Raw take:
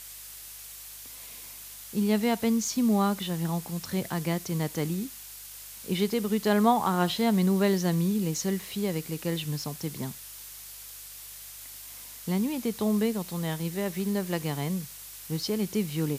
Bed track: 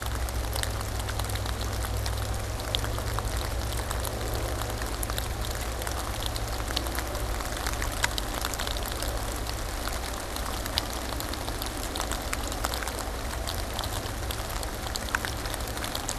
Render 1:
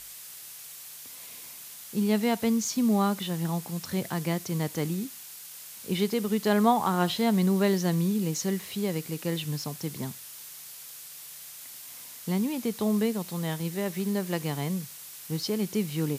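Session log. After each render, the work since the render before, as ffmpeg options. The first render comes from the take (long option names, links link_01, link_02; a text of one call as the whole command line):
ffmpeg -i in.wav -af "bandreject=frequency=50:width_type=h:width=4,bandreject=frequency=100:width_type=h:width=4" out.wav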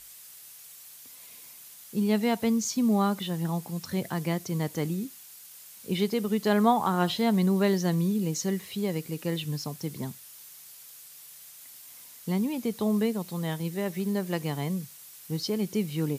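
ffmpeg -i in.wav -af "afftdn=noise_reduction=6:noise_floor=-45" out.wav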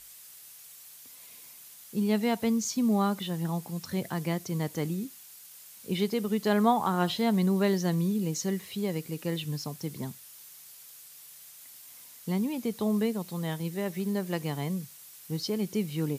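ffmpeg -i in.wav -af "volume=-1.5dB" out.wav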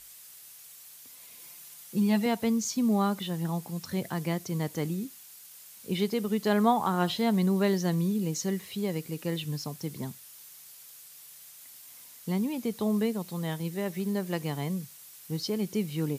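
ffmpeg -i in.wav -filter_complex "[0:a]asettb=1/sr,asplit=3[link_01][link_02][link_03];[link_01]atrim=end=1.394[link_04];[link_02]atrim=start=1.39:end=2.26,asetpts=PTS-STARTPTS,afade=type=in:duration=0.004:curve=qsin,afade=type=out:start_time=0.866:duration=0.004:curve=qsin,aecho=1:1:5.8:0.65,atrim=end_sample=38367[link_05];[link_03]atrim=start=2.256[link_06];[link_04][link_05]acrossfade=duration=0.004:curve1=hsin:curve2=qsin[link_07];[link_07][link_06]acrossfade=duration=0.004:curve1=qsin:curve2=hsin" out.wav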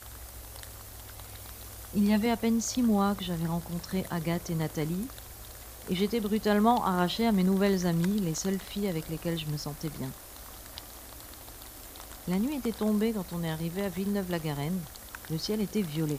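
ffmpeg -i in.wav -i bed.wav -filter_complex "[1:a]volume=-16dB[link_01];[0:a][link_01]amix=inputs=2:normalize=0" out.wav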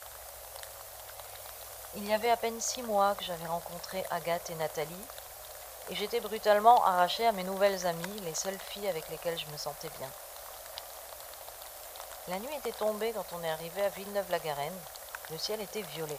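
ffmpeg -i in.wav -af "lowshelf=frequency=410:width_type=q:width=3:gain=-12.5" out.wav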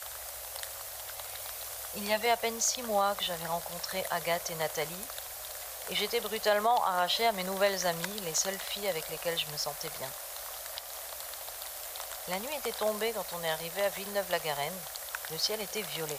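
ffmpeg -i in.wav -filter_complex "[0:a]acrossover=split=370|1400[link_01][link_02][link_03];[link_03]acontrast=54[link_04];[link_01][link_02][link_04]amix=inputs=3:normalize=0,alimiter=limit=-17dB:level=0:latency=1:release=167" out.wav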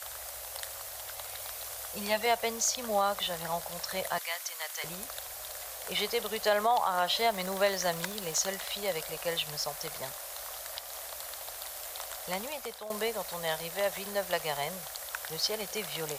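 ffmpeg -i in.wav -filter_complex "[0:a]asettb=1/sr,asplit=3[link_01][link_02][link_03];[link_01]atrim=end=4.184[link_04];[link_02]atrim=start=4.18:end=4.84,asetpts=PTS-STARTPTS,afade=type=in:duration=0.004:curve=qsin,afade=type=out:start_time=0.656:duration=0.004:curve=qsin,highpass=1300[link_05];[link_03]atrim=start=4.836[link_06];[link_04][link_05]acrossfade=duration=0.004:curve1=hsin:curve2=qsin[link_07];[link_07][link_06]acrossfade=duration=0.004:curve1=qsin:curve2=hsin,asettb=1/sr,asplit=3[link_08][link_09][link_10];[link_08]atrim=end=7.254[link_11];[link_09]atrim=start=7.25:end=8.51,asetpts=PTS-STARTPTS,afade=type=in:duration=0.004:curve=qsin,afade=type=out:start_time=1.256:duration=0.004:curve=qsin,aeval=exprs='val(0)*gte(abs(val(0)),0.00422)':channel_layout=same[link_12];[link_10]atrim=start=8.506[link_13];[link_11][link_12]acrossfade=duration=0.004:curve1=hsin:curve2=qsin[link_14];[link_14][link_13]acrossfade=duration=0.004:curve1=qsin:curve2=hsin,asplit=2[link_15][link_16];[link_15]atrim=end=12.9,asetpts=PTS-STARTPTS,afade=type=out:start_time=12.41:duration=0.49:silence=0.177828[link_17];[link_16]atrim=start=12.9,asetpts=PTS-STARTPTS,afade=type=in:duration=0.004:curve=hsin:silence=0.177828[link_18];[link_17][link_18]concat=n=2:v=0:a=1" out.wav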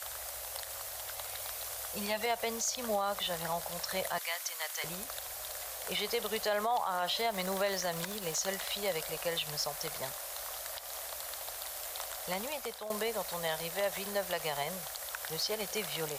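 ffmpeg -i in.wav -af "alimiter=limit=-23dB:level=0:latency=1:release=72" out.wav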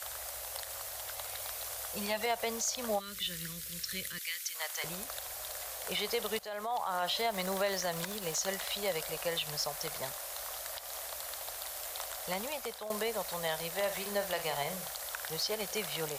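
ffmpeg -i in.wav -filter_complex "[0:a]asplit=3[link_01][link_02][link_03];[link_01]afade=type=out:start_time=2.98:duration=0.02[link_04];[link_02]asuperstop=centerf=780:order=4:qfactor=0.52,afade=type=in:start_time=2.98:duration=0.02,afade=type=out:start_time=4.54:duration=0.02[link_05];[link_03]afade=type=in:start_time=4.54:duration=0.02[link_06];[link_04][link_05][link_06]amix=inputs=3:normalize=0,asettb=1/sr,asplit=3[link_07][link_08][link_09];[link_07]atrim=end=13.744[link_10];[link_08]atrim=start=13.74:end=15.21,asetpts=PTS-STARTPTS,afade=type=in:duration=0.004:curve=qsin,afade=type=out:start_time=1.466:duration=0.004:curve=qsin,asplit=2[link_11][link_12];[link_12]adelay=49,volume=-9dB[link_13];[link_11][link_13]amix=inputs=2:normalize=0,atrim=end_sample=64827[link_14];[link_09]atrim=start=15.206[link_15];[link_10][link_14]acrossfade=duration=0.004:curve1=hsin:curve2=qsin[link_16];[link_16][link_15]acrossfade=duration=0.004:curve1=qsin:curve2=hsin,asplit=2[link_17][link_18];[link_17]atrim=end=6.39,asetpts=PTS-STARTPTS,afade=type=out:start_time=6.386:duration=0.004:curve=hsin:silence=0.177828[link_19];[link_18]atrim=start=6.39,asetpts=PTS-STARTPTS,afade=type=in:duration=0.58:silence=0.177828[link_20];[link_19][link_20]concat=n=2:v=0:a=1" out.wav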